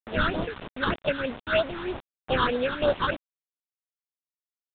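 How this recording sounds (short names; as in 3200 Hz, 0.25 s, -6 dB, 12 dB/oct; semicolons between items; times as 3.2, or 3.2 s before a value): aliases and images of a low sample rate 2100 Hz, jitter 20%; phasing stages 6, 3.2 Hz, lowest notch 610–2400 Hz; a quantiser's noise floor 6-bit, dither none; µ-law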